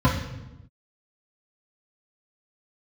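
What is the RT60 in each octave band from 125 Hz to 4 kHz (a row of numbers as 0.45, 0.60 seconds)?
1.3, 1.3, 1.0, 0.90, 0.85, 0.75 seconds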